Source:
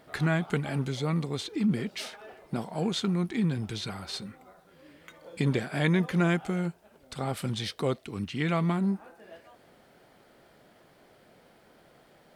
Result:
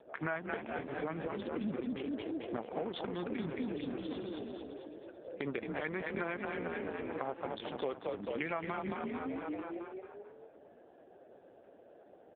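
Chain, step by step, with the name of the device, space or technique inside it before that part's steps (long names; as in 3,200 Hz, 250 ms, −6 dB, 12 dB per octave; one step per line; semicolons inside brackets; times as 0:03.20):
adaptive Wiener filter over 41 samples
0:03.66–0:04.09: low-shelf EQ 270 Hz +4.5 dB
echo with shifted repeats 221 ms, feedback 55%, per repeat +36 Hz, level −4 dB
voicemail (band-pass filter 430–3,300 Hz; downward compressor 6 to 1, threshold −42 dBFS, peak gain reduction 16 dB; level +9 dB; AMR narrowband 5.15 kbit/s 8,000 Hz)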